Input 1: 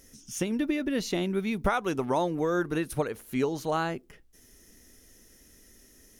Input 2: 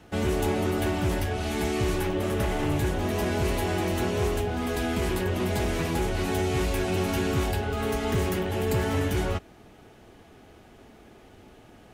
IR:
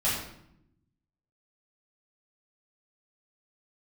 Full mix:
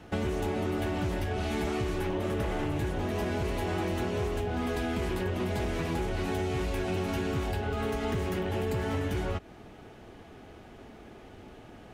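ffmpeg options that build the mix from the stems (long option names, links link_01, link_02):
-filter_complex "[0:a]volume=-17dB[link_01];[1:a]acompressor=threshold=-30dB:ratio=6,volume=2.5dB[link_02];[link_01][link_02]amix=inputs=2:normalize=0,highshelf=frequency=6000:gain=-8.5"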